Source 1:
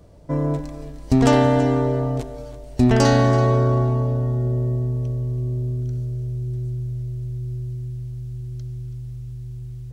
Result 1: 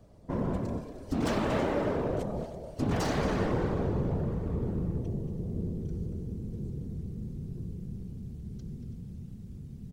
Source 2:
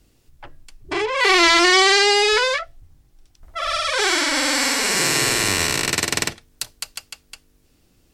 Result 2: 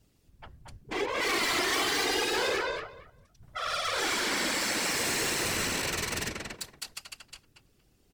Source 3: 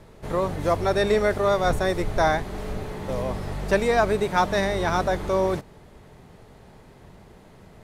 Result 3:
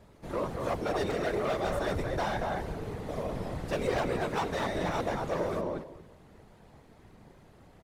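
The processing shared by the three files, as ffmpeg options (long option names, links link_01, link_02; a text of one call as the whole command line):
ffmpeg -i in.wav -filter_complex "[0:a]asplit=2[link_01][link_02];[link_02]adelay=232,lowpass=frequency=2200:poles=1,volume=-3.5dB,asplit=2[link_03][link_04];[link_04]adelay=232,lowpass=frequency=2200:poles=1,volume=0.18,asplit=2[link_05][link_06];[link_06]adelay=232,lowpass=frequency=2200:poles=1,volume=0.18[link_07];[link_01][link_03][link_05][link_07]amix=inputs=4:normalize=0,asoftclip=type=hard:threshold=-18.5dB,afftfilt=real='hypot(re,im)*cos(2*PI*random(0))':imag='hypot(re,im)*sin(2*PI*random(1))':win_size=512:overlap=0.75,volume=-2dB" out.wav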